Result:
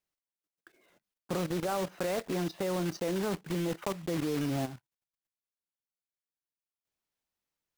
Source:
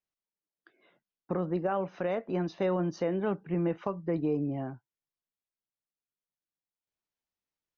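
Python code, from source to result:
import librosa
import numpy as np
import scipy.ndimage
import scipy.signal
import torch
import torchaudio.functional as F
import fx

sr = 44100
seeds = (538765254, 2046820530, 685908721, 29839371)

y = fx.block_float(x, sr, bits=3)
y = fx.level_steps(y, sr, step_db=12)
y = y * 10.0 ** (5.0 / 20.0)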